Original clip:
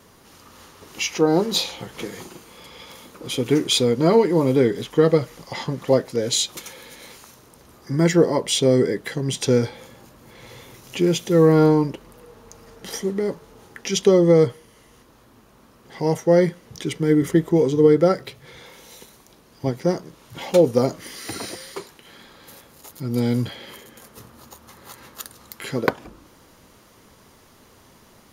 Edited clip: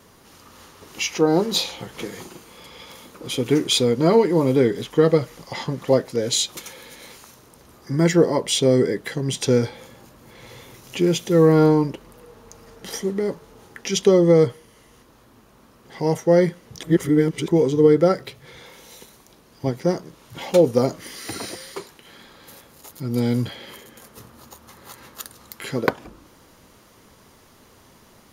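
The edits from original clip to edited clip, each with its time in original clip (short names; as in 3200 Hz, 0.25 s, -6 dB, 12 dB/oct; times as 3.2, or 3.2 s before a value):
16.83–17.48 reverse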